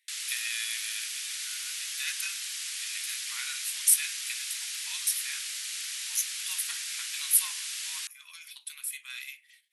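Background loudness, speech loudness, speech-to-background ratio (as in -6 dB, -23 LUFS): -33.5 LUFS, -31.0 LUFS, 2.5 dB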